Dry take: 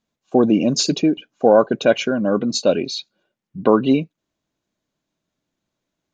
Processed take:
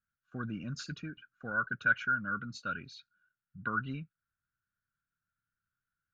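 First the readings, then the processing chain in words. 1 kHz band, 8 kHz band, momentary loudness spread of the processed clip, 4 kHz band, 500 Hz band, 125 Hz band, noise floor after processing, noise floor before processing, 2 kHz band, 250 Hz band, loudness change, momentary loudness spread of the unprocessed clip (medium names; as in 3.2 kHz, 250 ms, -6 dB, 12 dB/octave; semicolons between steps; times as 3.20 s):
-12.5 dB, -26.0 dB, 17 LU, -23.5 dB, -33.0 dB, -13.0 dB, under -85 dBFS, -81 dBFS, -0.5 dB, -24.0 dB, -17.0 dB, 8 LU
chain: FFT filter 110 Hz 0 dB, 370 Hz -25 dB, 900 Hz -27 dB, 1.4 kHz +12 dB, 2.1 kHz -9 dB, 3.4 kHz -15 dB, 6.7 kHz -19 dB; trim -7.5 dB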